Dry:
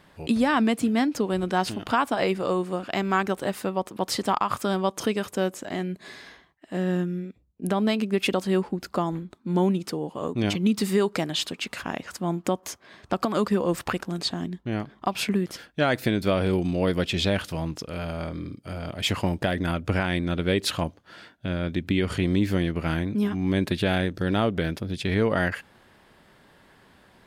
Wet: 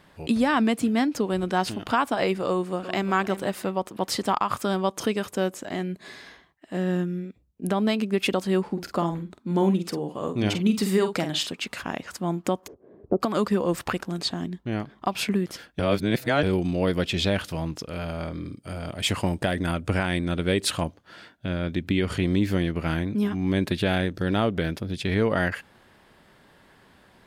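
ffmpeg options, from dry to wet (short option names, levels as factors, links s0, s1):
-filter_complex "[0:a]asplit=2[s0][s1];[s1]afade=t=in:st=2.49:d=0.01,afade=t=out:st=3.11:d=0.01,aecho=0:1:350|700|1050:0.223872|0.0783552|0.0274243[s2];[s0][s2]amix=inputs=2:normalize=0,asplit=3[s3][s4][s5];[s3]afade=t=out:st=8.66:d=0.02[s6];[s4]asplit=2[s7][s8];[s8]adelay=47,volume=0.376[s9];[s7][s9]amix=inputs=2:normalize=0,afade=t=in:st=8.66:d=0.02,afade=t=out:st=11.47:d=0.02[s10];[s5]afade=t=in:st=11.47:d=0.02[s11];[s6][s10][s11]amix=inputs=3:normalize=0,asplit=3[s12][s13][s14];[s12]afade=t=out:st=12.66:d=0.02[s15];[s13]lowpass=f=430:t=q:w=3.3,afade=t=in:st=12.66:d=0.02,afade=t=out:st=13.2:d=0.02[s16];[s14]afade=t=in:st=13.2:d=0.02[s17];[s15][s16][s17]amix=inputs=3:normalize=0,asettb=1/sr,asplit=3[s18][s19][s20];[s18]atrim=end=18.454[s21];[s19]atrim=start=18.45:end=20.85,asetpts=PTS-STARTPTS,afade=t=in:d=0.004:c=qsin,afade=t=out:st=2.396:d=0.004:c=qsin,equalizer=f=8700:t=o:w=0.39:g=8[s22];[s20]atrim=start=20.846[s23];[s21][s22]acrossfade=d=0.004:c1=hsin:c2=qsin[s24];[s24][s23]acrossfade=d=0.004:c1=qsin:c2=hsin,asplit=3[s25][s26][s27];[s25]atrim=end=15.792[s28];[s26]atrim=start=15.788:end=16.432,asetpts=PTS-STARTPTS,areverse[s29];[s27]atrim=start=16.428[s30];[s28][s29]acrossfade=d=0.004:c1=hsin:c2=hsin[s31];[s31][s30]acrossfade=d=0.004:c1=hsin:c2=hsin"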